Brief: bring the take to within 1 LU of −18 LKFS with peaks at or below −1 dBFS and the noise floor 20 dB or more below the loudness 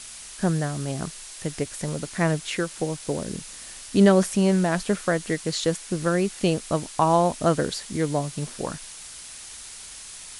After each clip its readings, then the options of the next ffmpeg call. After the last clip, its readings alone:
background noise floor −41 dBFS; target noise floor −45 dBFS; integrated loudness −24.5 LKFS; sample peak −3.5 dBFS; target loudness −18.0 LKFS
→ -af "afftdn=noise_reduction=6:noise_floor=-41"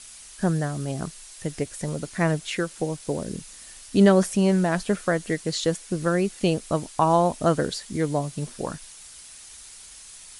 background noise floor −45 dBFS; integrated loudness −25.0 LKFS; sample peak −3.5 dBFS; target loudness −18.0 LKFS
→ -af "volume=7dB,alimiter=limit=-1dB:level=0:latency=1"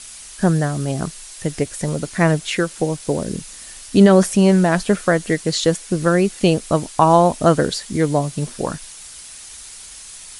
integrated loudness −18.0 LKFS; sample peak −1.0 dBFS; background noise floor −38 dBFS

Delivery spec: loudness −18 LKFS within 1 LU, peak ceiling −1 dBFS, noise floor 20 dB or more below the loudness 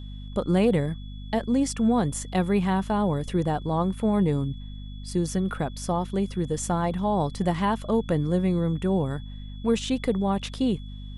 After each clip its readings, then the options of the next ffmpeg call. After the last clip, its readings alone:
mains hum 50 Hz; hum harmonics up to 250 Hz; level of the hum −35 dBFS; interfering tone 3,400 Hz; level of the tone −51 dBFS; integrated loudness −26.0 LKFS; sample peak −11.0 dBFS; target loudness −18.0 LKFS
→ -af "bandreject=frequency=50:width_type=h:width=4,bandreject=frequency=100:width_type=h:width=4,bandreject=frequency=150:width_type=h:width=4,bandreject=frequency=200:width_type=h:width=4,bandreject=frequency=250:width_type=h:width=4"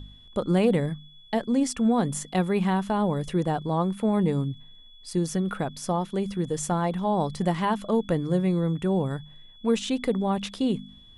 mains hum none found; interfering tone 3,400 Hz; level of the tone −51 dBFS
→ -af "bandreject=frequency=3400:width=30"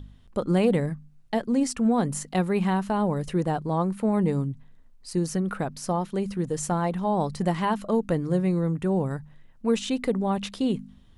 interfering tone none found; integrated loudness −26.5 LKFS; sample peak −10.5 dBFS; target loudness −18.0 LKFS
→ -af "volume=8.5dB"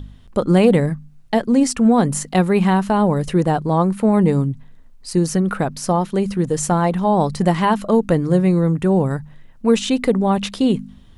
integrated loudness −18.0 LKFS; sample peak −2.0 dBFS; background noise floor −44 dBFS

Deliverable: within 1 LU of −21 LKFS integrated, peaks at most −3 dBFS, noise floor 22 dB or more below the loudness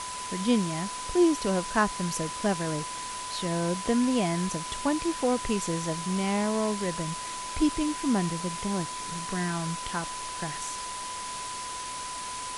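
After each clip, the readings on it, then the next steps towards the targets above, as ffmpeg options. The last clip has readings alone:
interfering tone 1,000 Hz; level of the tone −36 dBFS; background noise floor −36 dBFS; target noise floor −51 dBFS; integrated loudness −29.0 LKFS; sample peak −11.5 dBFS; target loudness −21.0 LKFS
→ -af "bandreject=frequency=1000:width=30"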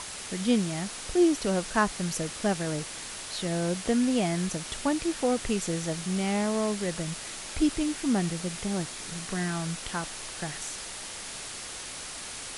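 interfering tone none found; background noise floor −40 dBFS; target noise floor −52 dBFS
→ -af "afftdn=noise_reduction=12:noise_floor=-40"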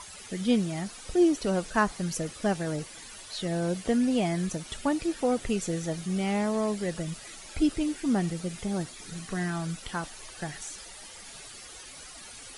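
background noise floor −46 dBFS; target noise floor −52 dBFS
→ -af "afftdn=noise_reduction=6:noise_floor=-46"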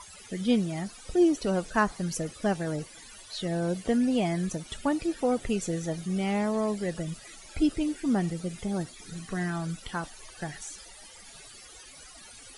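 background noise floor −49 dBFS; target noise floor −52 dBFS
→ -af "afftdn=noise_reduction=6:noise_floor=-49"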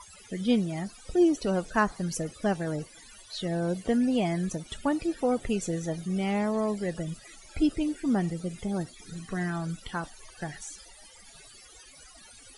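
background noise floor −52 dBFS; integrated loudness −29.5 LKFS; sample peak −12.5 dBFS; target loudness −21.0 LKFS
→ -af "volume=8.5dB"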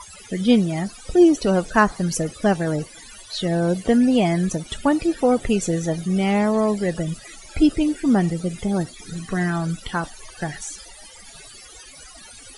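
integrated loudness −21.0 LKFS; sample peak −4.0 dBFS; background noise floor −43 dBFS

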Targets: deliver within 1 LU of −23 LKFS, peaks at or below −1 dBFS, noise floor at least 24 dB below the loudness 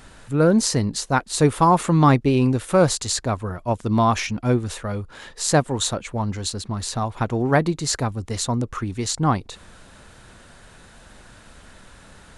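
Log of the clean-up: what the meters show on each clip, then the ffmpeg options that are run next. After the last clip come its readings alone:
integrated loudness −21.5 LKFS; sample peak −4.0 dBFS; target loudness −23.0 LKFS
→ -af "volume=-1.5dB"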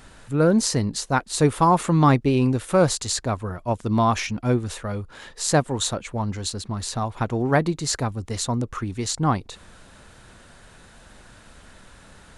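integrated loudness −23.0 LKFS; sample peak −5.5 dBFS; background noise floor −50 dBFS

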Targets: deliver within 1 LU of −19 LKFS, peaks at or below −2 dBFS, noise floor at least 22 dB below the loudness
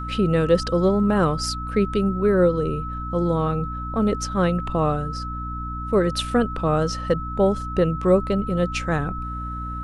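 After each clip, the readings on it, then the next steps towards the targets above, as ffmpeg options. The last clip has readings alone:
mains hum 60 Hz; hum harmonics up to 300 Hz; level of the hum −29 dBFS; interfering tone 1,300 Hz; level of the tone −31 dBFS; integrated loudness −22.5 LKFS; sample peak −6.0 dBFS; target loudness −19.0 LKFS
→ -af "bandreject=frequency=60:width_type=h:width=4,bandreject=frequency=120:width_type=h:width=4,bandreject=frequency=180:width_type=h:width=4,bandreject=frequency=240:width_type=h:width=4,bandreject=frequency=300:width_type=h:width=4"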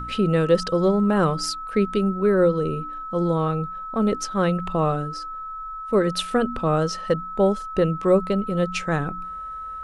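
mains hum none found; interfering tone 1,300 Hz; level of the tone −31 dBFS
→ -af "bandreject=frequency=1300:width=30"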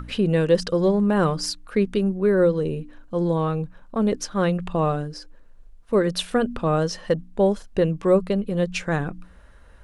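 interfering tone none found; integrated loudness −23.0 LKFS; sample peak −7.0 dBFS; target loudness −19.0 LKFS
→ -af "volume=4dB"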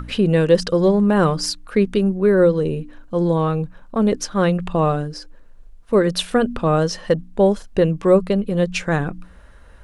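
integrated loudness −19.0 LKFS; sample peak −3.0 dBFS; background noise floor −44 dBFS

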